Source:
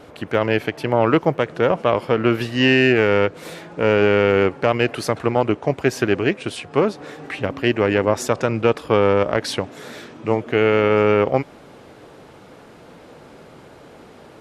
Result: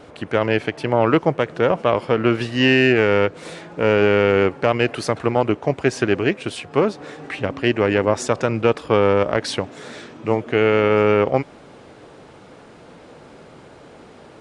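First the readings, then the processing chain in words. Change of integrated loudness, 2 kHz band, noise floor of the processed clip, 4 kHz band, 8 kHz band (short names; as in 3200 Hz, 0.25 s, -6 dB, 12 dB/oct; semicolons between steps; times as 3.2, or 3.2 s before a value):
0.0 dB, 0.0 dB, -45 dBFS, 0.0 dB, 0.0 dB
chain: downsampling 22050 Hz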